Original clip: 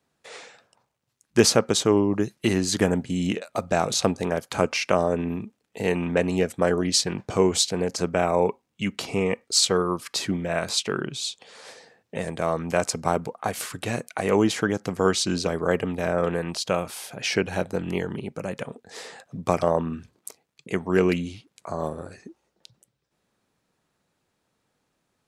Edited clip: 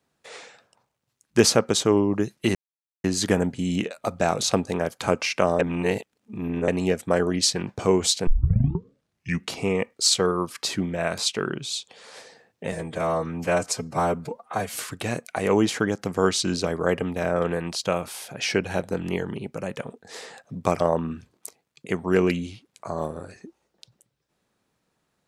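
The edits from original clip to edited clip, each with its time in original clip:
0:02.55: splice in silence 0.49 s
0:05.10–0:06.19: reverse
0:07.78: tape start 1.24 s
0:12.23–0:13.61: time-stretch 1.5×

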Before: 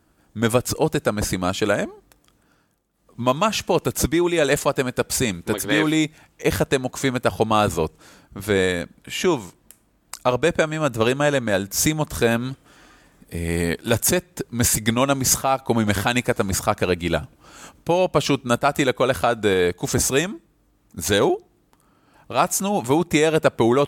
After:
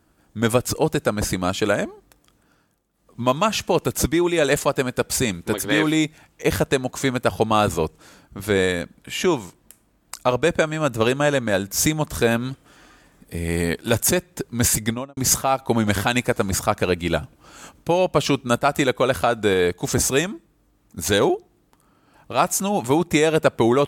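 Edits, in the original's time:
0:14.76–0:15.17: fade out and dull

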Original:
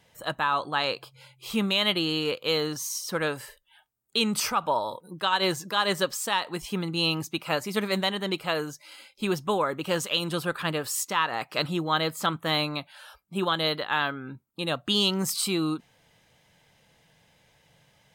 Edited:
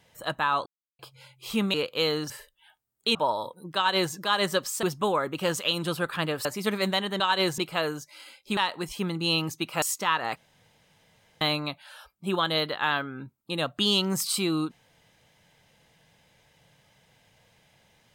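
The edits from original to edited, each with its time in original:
0:00.66–0:00.99: silence
0:01.74–0:02.23: remove
0:02.79–0:03.39: remove
0:04.24–0:04.62: remove
0:05.23–0:05.61: duplicate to 0:08.30
0:06.30–0:07.55: swap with 0:09.29–0:10.91
0:11.45–0:12.50: fill with room tone

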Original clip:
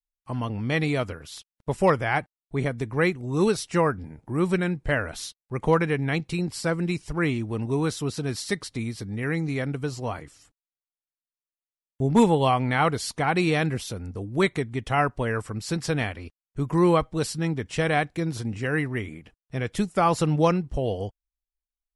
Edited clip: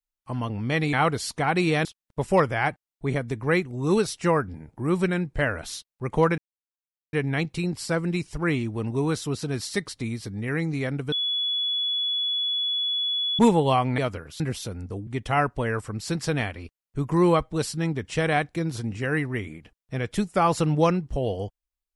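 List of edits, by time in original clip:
0:00.93–0:01.35: swap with 0:12.73–0:13.65
0:05.88: splice in silence 0.75 s
0:09.87–0:12.14: beep over 3,400 Hz −23 dBFS
0:14.32–0:14.68: remove

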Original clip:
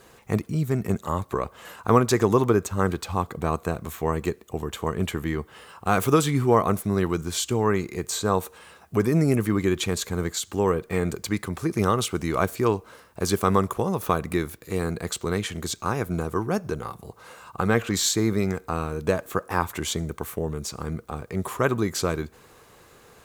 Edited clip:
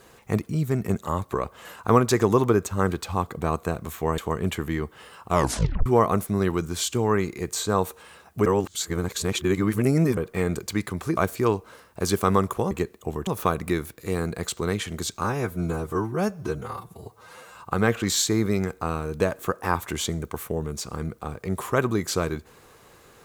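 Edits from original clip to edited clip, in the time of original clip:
0:04.18–0:04.74: move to 0:13.91
0:05.84: tape stop 0.58 s
0:09.02–0:10.73: reverse
0:11.73–0:12.37: remove
0:15.88–0:17.42: time-stretch 1.5×

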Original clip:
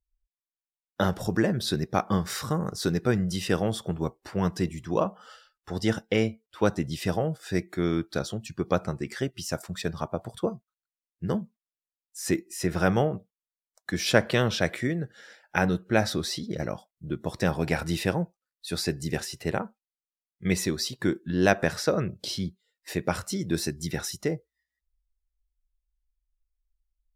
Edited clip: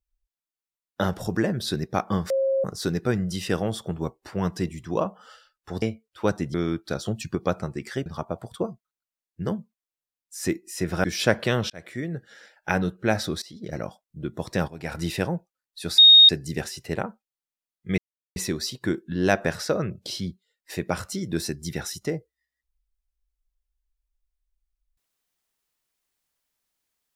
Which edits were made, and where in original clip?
0:02.30–0:02.64: beep over 538 Hz −19.5 dBFS
0:05.82–0:06.20: remove
0:06.92–0:07.79: remove
0:08.31–0:08.60: clip gain +5.5 dB
0:09.31–0:09.89: remove
0:12.87–0:13.91: remove
0:14.57–0:15.04: fade in
0:16.29–0:16.67: fade in, from −20 dB
0:17.55–0:17.85: fade in quadratic, from −15 dB
0:18.85: insert tone 3,720 Hz −8 dBFS 0.31 s
0:20.54: splice in silence 0.38 s

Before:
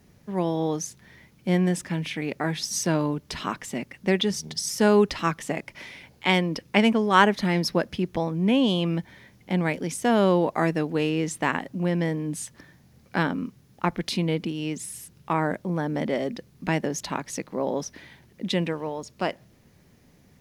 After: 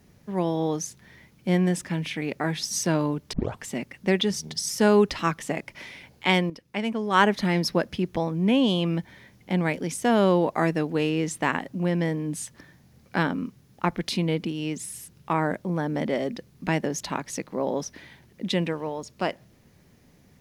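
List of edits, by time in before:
0:03.33: tape start 0.31 s
0:06.50–0:07.31: fade in quadratic, from −12.5 dB

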